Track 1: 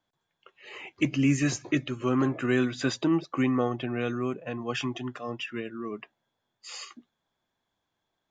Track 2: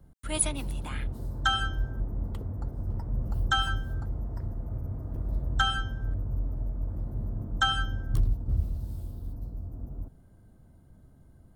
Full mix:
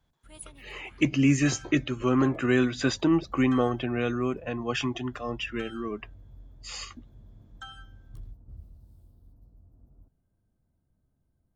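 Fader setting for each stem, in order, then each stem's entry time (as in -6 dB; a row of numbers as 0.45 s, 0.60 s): +2.0 dB, -18.5 dB; 0.00 s, 0.00 s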